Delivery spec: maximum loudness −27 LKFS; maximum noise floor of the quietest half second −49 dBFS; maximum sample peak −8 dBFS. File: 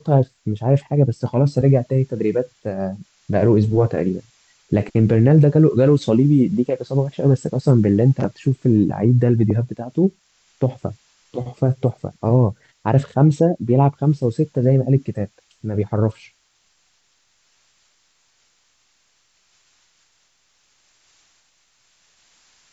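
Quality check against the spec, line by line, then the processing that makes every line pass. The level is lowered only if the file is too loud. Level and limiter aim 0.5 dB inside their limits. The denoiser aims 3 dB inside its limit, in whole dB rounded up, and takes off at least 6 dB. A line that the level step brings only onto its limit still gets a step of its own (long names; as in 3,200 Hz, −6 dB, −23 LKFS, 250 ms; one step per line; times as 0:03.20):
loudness −18.5 LKFS: out of spec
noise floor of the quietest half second −63 dBFS: in spec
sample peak −5.5 dBFS: out of spec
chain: level −9 dB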